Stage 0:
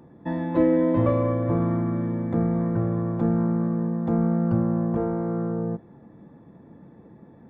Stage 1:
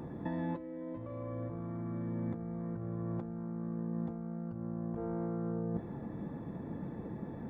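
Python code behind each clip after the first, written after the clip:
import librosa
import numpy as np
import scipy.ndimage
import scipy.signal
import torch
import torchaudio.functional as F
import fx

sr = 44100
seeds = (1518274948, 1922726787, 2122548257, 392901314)

y = fx.low_shelf(x, sr, hz=61.0, db=7.0)
y = fx.over_compress(y, sr, threshold_db=-34.0, ratio=-1.0)
y = y * librosa.db_to_amplitude(-4.5)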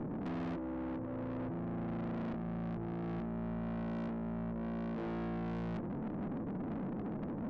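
y = fx.bandpass_q(x, sr, hz=240.0, q=1.4)
y = fx.tube_stage(y, sr, drive_db=51.0, bias=0.8)
y = y * librosa.db_to_amplitude(14.0)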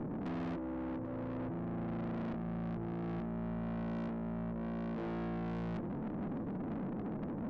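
y = x + 10.0 ** (-22.5 / 20.0) * np.pad(x, (int(792 * sr / 1000.0), 0))[:len(x)]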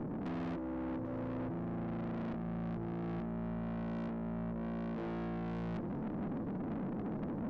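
y = scipy.ndimage.median_filter(x, 15, mode='constant')
y = fx.rider(y, sr, range_db=10, speed_s=0.5)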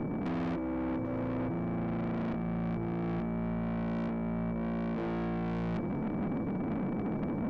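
y = x + 10.0 ** (-63.0 / 20.0) * np.sin(2.0 * np.pi * 2300.0 * np.arange(len(x)) / sr)
y = y * librosa.db_to_amplitude(5.5)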